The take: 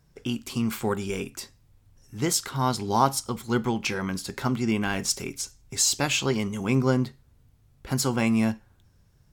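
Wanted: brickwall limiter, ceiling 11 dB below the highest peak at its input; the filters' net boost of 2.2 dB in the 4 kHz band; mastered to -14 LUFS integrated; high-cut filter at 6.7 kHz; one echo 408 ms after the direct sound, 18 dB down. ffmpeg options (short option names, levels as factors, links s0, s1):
-af "lowpass=6700,equalizer=f=4000:t=o:g=4,alimiter=limit=0.126:level=0:latency=1,aecho=1:1:408:0.126,volume=5.96"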